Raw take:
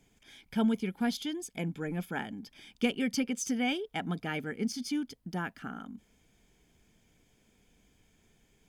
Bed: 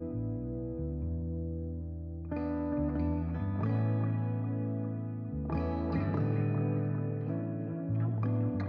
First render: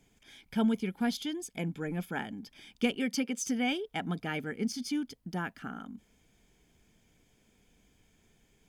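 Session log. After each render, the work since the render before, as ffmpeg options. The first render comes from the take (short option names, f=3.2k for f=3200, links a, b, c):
-filter_complex "[0:a]asettb=1/sr,asplit=3[a][b][c];[a]atrim=end=2.964[d];[b]atrim=start=2.96:end=3.46,asetpts=PTS-STARTPTS,afade=t=in:d=0.004:c=qsin,afade=t=out:st=0.496:d=0.004:c=qsin,highpass=190[e];[c]atrim=start=3.456[f];[d][e]acrossfade=d=0.004:c1=hsin:c2=qsin[g];[g][f]acrossfade=d=0.004:c1=qsin:c2=hsin"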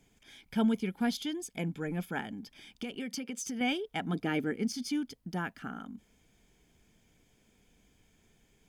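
-filter_complex "[0:a]asettb=1/sr,asplit=3[a][b][c];[a]atrim=end=2.204[d];[b]atrim=start=2.2:end=3.61,asetpts=PTS-STARTPTS,afade=t=in:d=0.004:c=qsin,afade=t=out:st=1.406:d=0.004:c=qsin,acompressor=threshold=-34dB:ratio=6:attack=3.2:release=140:knee=1:detection=peak[e];[c]atrim=start=3.606[f];[d][e]acrossfade=d=0.004:c1=hsin:c2=qsin[g];[g][f]acrossfade=d=0.004:c1=qsin:c2=hsin,asettb=1/sr,asplit=3[h][i][j];[h]atrim=end=4.134[k];[i]atrim=start=4.13:end=4.57,asetpts=PTS-STARTPTS,afade=t=in:d=0.004:c=qsin,afade=t=out:st=0.436:d=0.004:c=qsin,equalizer=f=330:w=1.5:g=8.5[l];[j]atrim=start=4.566[m];[k][l]acrossfade=d=0.004:c1=hsin:c2=qsin[n];[n][m]acrossfade=d=0.004:c1=qsin:c2=hsin"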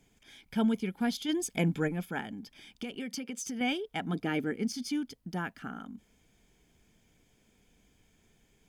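-filter_complex "[0:a]asplit=3[a][b][c];[a]afade=t=out:st=1.28:d=0.02[d];[b]acontrast=72,afade=t=in:st=1.28:d=0.02,afade=t=out:st=1.87:d=0.02[e];[c]afade=t=in:st=1.87:d=0.02[f];[d][e][f]amix=inputs=3:normalize=0"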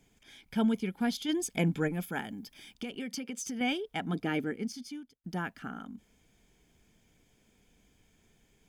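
-filter_complex "[0:a]asettb=1/sr,asplit=3[a][b][c];[a]atrim=end=1.934[d];[b]atrim=start=1.93:end=2.74,asetpts=PTS-STARTPTS,afade=t=in:d=0.004:c=qsin,afade=t=out:st=0.806:d=0.004:c=qsin,highshelf=f=8.8k:g=11[e];[c]atrim=start=2.736[f];[d][e]acrossfade=d=0.004:c1=hsin:c2=qsin[g];[g][f]acrossfade=d=0.004:c1=qsin:c2=hsin,asplit=2[h][i];[h]atrim=end=5.24,asetpts=PTS-STARTPTS,afade=t=out:st=4.35:d=0.89[j];[i]atrim=start=5.24,asetpts=PTS-STARTPTS,afade=t=in:d=0.004:c=hsin[k];[j][k]concat=n=2:v=0:a=1"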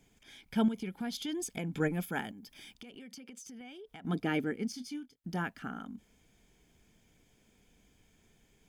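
-filter_complex "[0:a]asettb=1/sr,asplit=3[a][b][c];[a]atrim=end=0.684[d];[b]atrim=start=0.68:end=1.8,asetpts=PTS-STARTPTS,afade=t=in:d=0.004:c=qsin,afade=t=out:st=1.116:d=0.004:c=qsin,acompressor=threshold=-33dB:ratio=6:attack=3.2:release=140:knee=1:detection=peak[e];[c]atrim=start=1.796[f];[d][e]acrossfade=d=0.004:c1=hsin:c2=qsin[g];[g][f]acrossfade=d=0.004:c1=qsin:c2=hsin,asettb=1/sr,asplit=3[h][i][j];[h]atrim=end=2.314[k];[i]atrim=start=2.31:end=4.05,asetpts=PTS-STARTPTS,afade=t=in:d=0.004:c=qsin,afade=t=out:st=1.736:d=0.004:c=qsin,acompressor=threshold=-46dB:ratio=8:attack=3.2:release=140:knee=1:detection=peak[l];[j]atrim=start=4.046[m];[k][l]acrossfade=d=0.004:c1=hsin:c2=qsin[n];[n][m]acrossfade=d=0.004:c1=qsin:c2=hsin,asettb=1/sr,asplit=3[o][p][q];[o]atrim=end=4.714[r];[p]atrim=start=4.71:end=5.44,asetpts=PTS-STARTPTS,afade=t=in:d=0.004:c=qsin,afade=t=out:st=0.726:d=0.004:c=qsin,asplit=2[s][t];[t]adelay=24,volume=-11.5dB[u];[s][u]amix=inputs=2:normalize=0,atrim=end_sample=32193[v];[q]atrim=start=5.436[w];[r][v]acrossfade=d=0.004:c1=hsin:c2=qsin[x];[x][w]acrossfade=d=0.004:c1=qsin:c2=hsin"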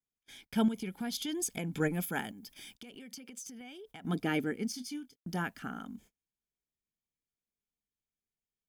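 -af "agate=range=-34dB:threshold=-56dB:ratio=16:detection=peak,highshelf=f=6.4k:g=9"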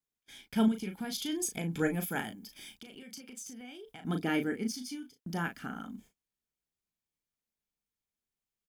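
-filter_complex "[0:a]asplit=2[a][b];[b]adelay=36,volume=-7dB[c];[a][c]amix=inputs=2:normalize=0"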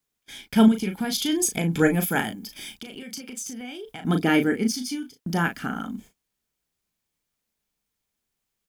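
-af "volume=10.5dB"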